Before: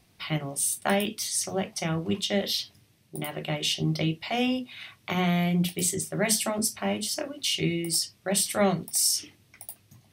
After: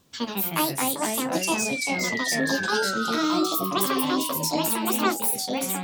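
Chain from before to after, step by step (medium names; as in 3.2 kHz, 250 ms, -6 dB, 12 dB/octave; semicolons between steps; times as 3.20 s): gliding tape speed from 150% -> 197%; painted sound fall, 1.41–3.15 s, 1.2–2.8 kHz -32 dBFS; ever faster or slower copies 114 ms, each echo -3 st, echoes 3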